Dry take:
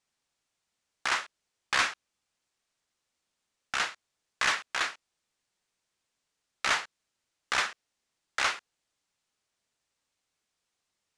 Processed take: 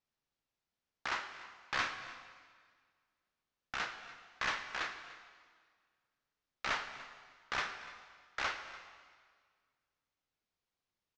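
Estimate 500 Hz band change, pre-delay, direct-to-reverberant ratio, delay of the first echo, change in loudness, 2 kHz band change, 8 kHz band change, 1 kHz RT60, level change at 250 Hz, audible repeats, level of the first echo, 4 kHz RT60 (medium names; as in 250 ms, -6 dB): -5.5 dB, 7 ms, 7.0 dB, 293 ms, -9.5 dB, -8.0 dB, -14.5 dB, 1.7 s, -4.0 dB, 1, -18.5 dB, 1.6 s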